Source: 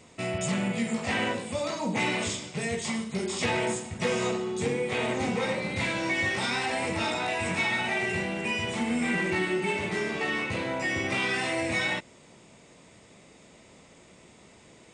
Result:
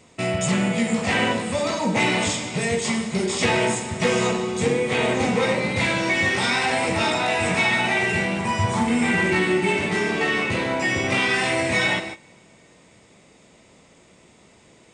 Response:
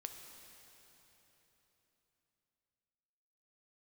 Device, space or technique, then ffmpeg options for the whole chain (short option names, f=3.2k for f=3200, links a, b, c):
keyed gated reverb: -filter_complex "[0:a]asettb=1/sr,asplit=3[a][b][c];[a]atrim=end=8.394[d];[b]atrim=start=8.39:end=8.88,asetpts=PTS-STARTPTS,afade=t=in:d=0.004:c=qsin,afade=t=out:st=0.486:d=0.004:c=qsin,equalizer=f=100:t=o:w=0.67:g=12,equalizer=f=400:t=o:w=0.67:g=-5,equalizer=f=1k:t=o:w=0.67:g=8,equalizer=f=2.5k:t=o:w=0.67:g=-11[e];[c]atrim=start=8.876[f];[d][e]acrossfade=d=0.004:c1=hsin:c2=qsin[g];[g][f]acrossfade=d=0.004:c1=qsin:c2=hsin,asplit=3[h][i][j];[1:a]atrim=start_sample=2205[k];[i][k]afir=irnorm=-1:irlink=0[l];[j]apad=whole_len=658543[m];[l][m]sidechaingate=range=-20dB:threshold=-47dB:ratio=16:detection=peak,volume=6.5dB[n];[h][n]amix=inputs=2:normalize=0"